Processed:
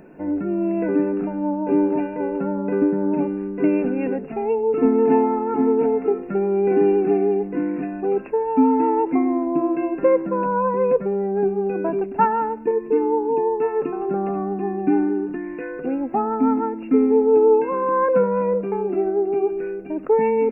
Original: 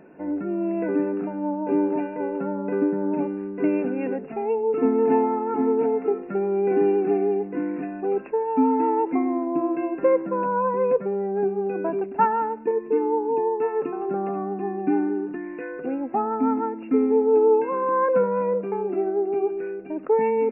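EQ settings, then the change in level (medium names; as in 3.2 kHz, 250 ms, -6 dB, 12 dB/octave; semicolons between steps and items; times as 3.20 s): tone controls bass -1 dB, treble +10 dB; bass shelf 82 Hz +11 dB; bass shelf 230 Hz +4.5 dB; +1.5 dB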